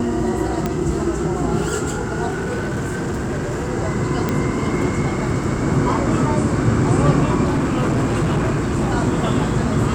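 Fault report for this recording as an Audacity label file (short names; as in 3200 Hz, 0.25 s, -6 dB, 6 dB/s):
0.660000	0.660000	pop -8 dBFS
2.280000	3.720000	clipped -19.5 dBFS
4.290000	4.290000	pop -7 dBFS
7.440000	8.910000	clipped -15 dBFS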